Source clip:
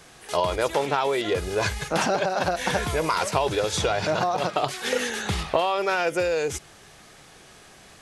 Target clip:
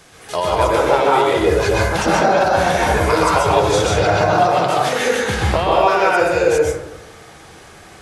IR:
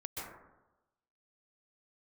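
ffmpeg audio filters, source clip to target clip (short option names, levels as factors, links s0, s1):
-filter_complex "[1:a]atrim=start_sample=2205[s0];[0:a][s0]afir=irnorm=-1:irlink=0,volume=2.51"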